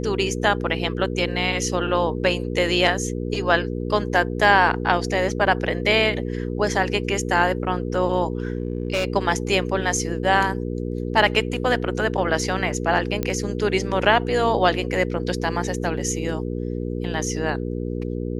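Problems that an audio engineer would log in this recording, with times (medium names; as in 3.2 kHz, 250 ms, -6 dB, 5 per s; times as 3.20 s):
hum 60 Hz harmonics 8 -27 dBFS
8.38–9.05 s: clipped -18 dBFS
13.23 s: pop -10 dBFS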